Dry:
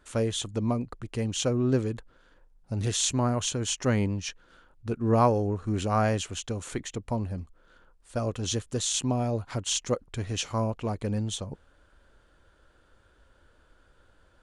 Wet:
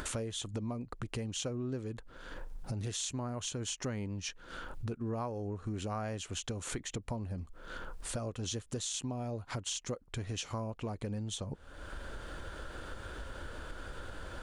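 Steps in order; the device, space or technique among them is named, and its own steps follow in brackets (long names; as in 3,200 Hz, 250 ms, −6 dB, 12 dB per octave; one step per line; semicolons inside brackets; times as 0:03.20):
upward and downward compression (upward compression, threshold −29 dBFS; downward compressor 6 to 1, threshold −37 dBFS, peak gain reduction 19 dB)
level +1.5 dB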